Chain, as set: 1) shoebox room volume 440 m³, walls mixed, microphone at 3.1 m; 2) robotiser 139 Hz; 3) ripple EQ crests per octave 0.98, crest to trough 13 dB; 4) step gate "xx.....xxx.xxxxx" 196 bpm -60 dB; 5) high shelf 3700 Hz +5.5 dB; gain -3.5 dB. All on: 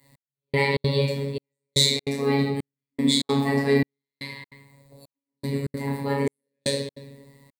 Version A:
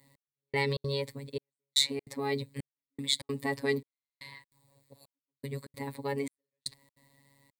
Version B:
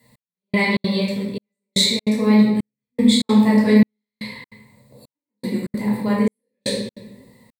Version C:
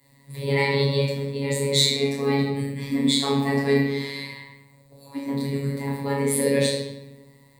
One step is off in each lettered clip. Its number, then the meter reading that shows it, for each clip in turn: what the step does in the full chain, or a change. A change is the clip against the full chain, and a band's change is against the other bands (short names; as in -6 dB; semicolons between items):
1, momentary loudness spread change +2 LU; 2, 250 Hz band +8.0 dB; 4, crest factor change -2.0 dB